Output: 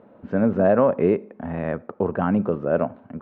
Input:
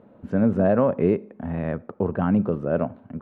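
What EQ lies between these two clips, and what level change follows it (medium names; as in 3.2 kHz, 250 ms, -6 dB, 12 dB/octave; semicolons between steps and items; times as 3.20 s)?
distance through air 180 m; bass shelf 240 Hz -10 dB; +5.0 dB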